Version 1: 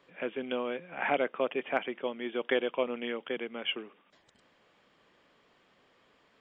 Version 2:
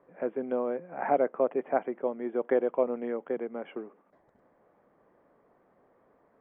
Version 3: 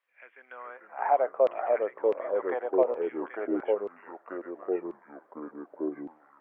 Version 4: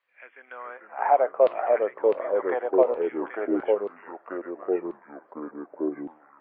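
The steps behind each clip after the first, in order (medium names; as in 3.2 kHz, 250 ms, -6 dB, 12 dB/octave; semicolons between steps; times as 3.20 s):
FFT filter 130 Hz 0 dB, 710 Hz +4 dB, 2 kHz -10 dB, 3 kHz -27 dB; trim +1 dB
LFO high-pass saw down 0.68 Hz 530–2900 Hz; ever faster or slower copies 376 ms, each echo -3 st, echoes 3; trim -2.5 dB
trim +4.5 dB; MP3 24 kbps 11.025 kHz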